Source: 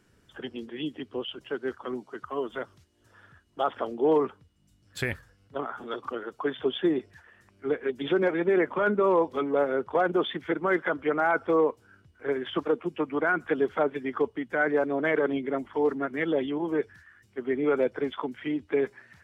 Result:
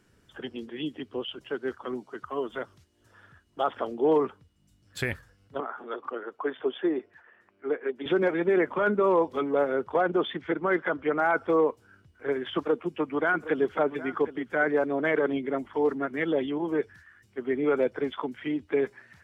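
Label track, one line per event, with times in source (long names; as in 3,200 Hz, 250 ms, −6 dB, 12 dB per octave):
5.600000	8.060000	three-way crossover with the lows and the highs turned down lows −17 dB, under 250 Hz, highs −17 dB, over 2,700 Hz
9.980000	11.170000	high-frequency loss of the air 85 metres
12.420000	14.670000	single-tap delay 765 ms −15 dB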